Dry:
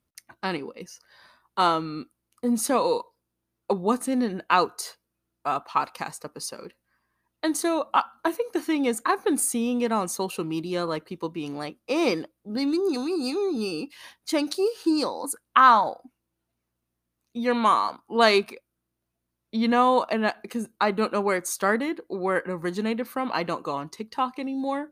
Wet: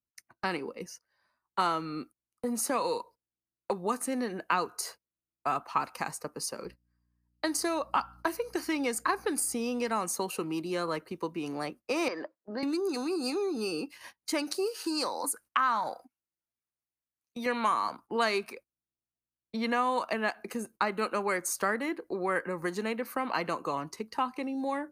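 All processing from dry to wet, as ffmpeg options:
-filter_complex "[0:a]asettb=1/sr,asplit=3[s0][s1][s2];[s0]atrim=end=6.654[s3];[s1]atrim=start=6.65:end=9.92,asetpts=PTS-STARTPTS,afade=t=in:d=0.004:c=qsin,afade=t=out:st=3.266:d=0.004:c=qsin,equalizer=f=4900:w=5:g=11.5,aeval=exprs='val(0)+0.00178*(sin(2*PI*60*n/s)+sin(2*PI*2*60*n/s)/2+sin(2*PI*3*60*n/s)/3+sin(2*PI*4*60*n/s)/4+sin(2*PI*5*60*n/s)/5)':c=same[s4];[s2]atrim=start=9.916[s5];[s3][s4]acrossfade=d=0.004:c1=hsin:c2=qsin[s6];[s6][s5]acrossfade=d=0.004:c1=qsin:c2=hsin,asettb=1/sr,asplit=3[s7][s8][s9];[s7]atrim=end=12.084[s10];[s8]atrim=start=12.08:end=12.63,asetpts=PTS-STARTPTS,afade=t=in:d=0.004:c=qsin,afade=t=out:st=0.546:d=0.004:c=qsin,acompressor=threshold=0.0447:ratio=2.5:attack=3.2:release=140:knee=1:detection=peak,highpass=300,equalizer=f=620:t=q:w=4:g=8,equalizer=f=1000:t=q:w=4:g=6,equalizer=f=1700:t=q:w=4:g=8,equalizer=f=2400:t=q:w=4:g=-6,equalizer=f=3400:t=q:w=4:g=-7,lowpass=f=4600:w=0.5412,lowpass=f=4600:w=1.3066[s11];[s9]atrim=start=12.626[s12];[s10][s11]acrossfade=d=0.004:c1=hsin:c2=qsin[s13];[s13][s12]acrossfade=d=0.004:c1=qsin:c2=hsin,asettb=1/sr,asplit=3[s14][s15][s16];[s14]atrim=end=14.744[s17];[s15]atrim=start=14.74:end=17.46,asetpts=PTS-STARTPTS,afade=t=in:d=0.004:c=qsin,afade=t=out:st=2.716:d=0.004:c=qsin,tiltshelf=f=720:g=-6,acompressor=threshold=0.0447:ratio=1.5:attack=3.2:release=140:knee=1:detection=peak[s18];[s16]atrim=start=17.456[s19];[s17][s18]acrossfade=d=0.004:c1=hsin:c2=qsin[s20];[s20][s19]acrossfade=d=0.004:c1=qsin:c2=hsin,agate=range=0.112:threshold=0.00562:ratio=16:detection=peak,equalizer=f=3500:t=o:w=0.43:g=-9.5,acrossover=split=320|1200[s21][s22][s23];[s21]acompressor=threshold=0.00891:ratio=4[s24];[s22]acompressor=threshold=0.0251:ratio=4[s25];[s23]acompressor=threshold=0.0355:ratio=4[s26];[s24][s25][s26]amix=inputs=3:normalize=0"

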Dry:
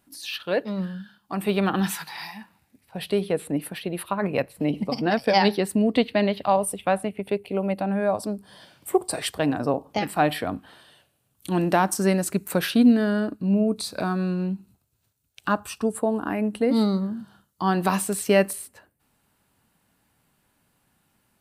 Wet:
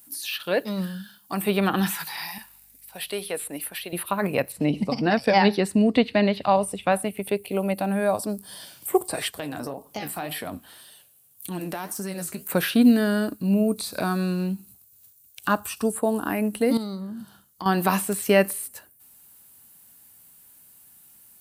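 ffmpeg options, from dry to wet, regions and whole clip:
-filter_complex "[0:a]asettb=1/sr,asplit=3[s0][s1][s2];[s0]atrim=end=2.384[s3];[s1]atrim=start=2.38:end=3.93,asetpts=PTS-STARTPTS,afade=t=in:d=0.004:c=qsin,afade=t=out:st=1.546:d=0.004:c=qsin,highpass=f=900:p=1,aeval=exprs='val(0)+0.000447*(sin(2*PI*50*n/s)+sin(2*PI*2*50*n/s)/2+sin(2*PI*3*50*n/s)/3+sin(2*PI*4*50*n/s)/4+sin(2*PI*5*50*n/s)/5)':c=same[s4];[s2]atrim=start=3.926[s5];[s3][s4]acrossfade=d=0.004:c1=hsin:c2=qsin[s6];[s6][s5]acrossfade=d=0.004:c1=qsin:c2=hsin,asettb=1/sr,asplit=3[s7][s8][s9];[s7]atrim=end=4.524[s10];[s8]atrim=start=4.52:end=6.92,asetpts=PTS-STARTPTS,afade=t=in:d=0.004:c=qsin,afade=t=out:st=2.396:d=0.004:c=qsin,lowpass=5500,bass=f=250:g=3,treble=f=4000:g=1,bandreject=f=3200:w=15[s11];[s9]atrim=start=6.916[s12];[s10][s11]acrossfade=d=0.004:c1=hsin:c2=qsin[s13];[s13][s12]acrossfade=d=0.004:c1=qsin:c2=hsin,asettb=1/sr,asplit=3[s14][s15][s16];[s14]atrim=end=9.284[s17];[s15]atrim=start=9.28:end=12.49,asetpts=PTS-STARTPTS,afade=t=in:d=0.004:c=qsin,afade=t=out:st=3.206:d=0.004:c=qsin,flanger=delay=4.4:depth=9.6:regen=50:speed=1.8:shape=sinusoidal,acompressor=threshold=0.0398:ratio=6:attack=3.2:release=140:knee=1:detection=peak[s18];[s16]atrim=start=12.486[s19];[s17][s18]acrossfade=d=0.004:c1=hsin:c2=qsin[s20];[s20][s19]acrossfade=d=0.004:c1=qsin:c2=hsin,asettb=1/sr,asplit=3[s21][s22][s23];[s21]atrim=end=16.774[s24];[s22]atrim=start=16.77:end=17.66,asetpts=PTS-STARTPTS,afade=t=in:d=0.004:c=qsin,afade=t=out:st=0.886:d=0.004:c=qsin,highshelf=f=5000:g=-8.5,acompressor=threshold=0.0224:ratio=3:attack=3.2:release=140:knee=1:detection=peak[s25];[s23]atrim=start=17.656[s26];[s24][s25]acrossfade=d=0.004:c1=hsin:c2=qsin[s27];[s27][s26]acrossfade=d=0.004:c1=qsin:c2=hsin,highshelf=f=6400:g=8,acrossover=split=2900[s28][s29];[s29]acompressor=threshold=0.00562:ratio=4:attack=1:release=60[s30];[s28][s30]amix=inputs=2:normalize=0,aemphasis=mode=production:type=75kf"

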